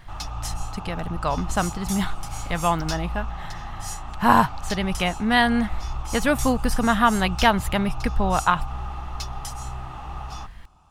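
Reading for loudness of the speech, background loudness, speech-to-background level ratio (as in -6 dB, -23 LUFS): -23.0 LUFS, -33.5 LUFS, 10.5 dB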